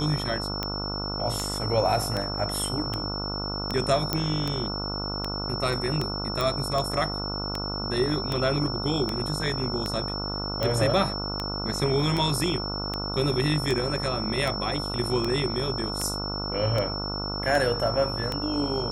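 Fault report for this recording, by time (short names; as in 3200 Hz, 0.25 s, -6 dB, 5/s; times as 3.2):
buzz 50 Hz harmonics 29 -33 dBFS
tick 78 rpm -13 dBFS
tone 5400 Hz -32 dBFS
4.13 pop -9 dBFS
6.41 pop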